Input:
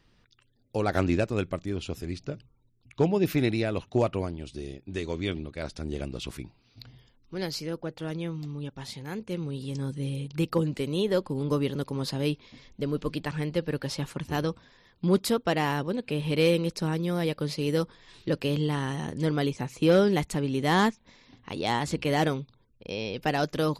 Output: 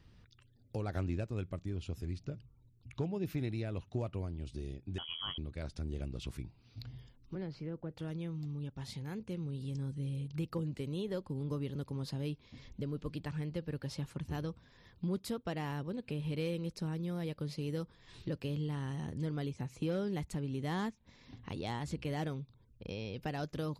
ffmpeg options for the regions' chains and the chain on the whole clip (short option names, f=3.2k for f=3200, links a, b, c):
-filter_complex "[0:a]asettb=1/sr,asplit=3[a][b][c];[a]atrim=end=4.984[d];[b]atrim=start=4.98:end=5.38,asetpts=PTS-STARTPTS,afade=t=in:d=0.004:c=qsin,afade=t=out:st=0.396:d=0.004:c=qsin,aemphasis=mode=production:type=75kf,asplit=2[e][f];[f]adelay=13,volume=-12dB[g];[e][g]amix=inputs=2:normalize=0,atrim=end_sample=17640,lowpass=f=2.9k:t=q:w=0.5098,lowpass=f=2.9k:t=q:w=0.6013,lowpass=f=2.9k:t=q:w=0.9,lowpass=f=2.9k:t=q:w=2.563,afreqshift=-3400[h];[c]atrim=start=5.376[i];[d][h]acrossfade=d=0.004:c1=hsin:c2=qsin[j];[j][i]acrossfade=d=0.004:c1=qsin:c2=hsin,asettb=1/sr,asplit=3[k][l][m];[k]atrim=end=7.354[n];[l]atrim=start=7.35:end=7.91,asetpts=PTS-STARTPTS,afade=t=in:d=0.004:c=qsin,afade=t=out:st=0.556:d=0.004:c=qsin,lowpass=2k,acrossover=split=500|3000[o][p][q];[p]acompressor=threshold=-38dB:ratio=6:attack=3.2:release=140:knee=2.83:detection=peak[r];[o][r][q]amix=inputs=3:normalize=0[s];[m]atrim=start=7.906[t];[n][s]acrossfade=d=0.004:c1=hsin:c2=qsin[u];[u][t]acrossfade=d=0.004:c1=qsin:c2=hsin,equalizer=f=79:t=o:w=2.4:g=11.5,acompressor=threshold=-41dB:ratio=2,volume=-3dB"